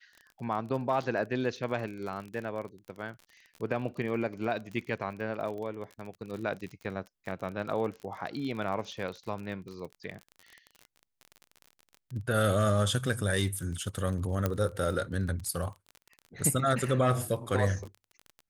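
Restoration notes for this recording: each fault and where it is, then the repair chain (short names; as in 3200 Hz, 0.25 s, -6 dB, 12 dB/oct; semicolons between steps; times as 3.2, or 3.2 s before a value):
crackle 31/s -37 dBFS
14.46 pop -14 dBFS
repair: de-click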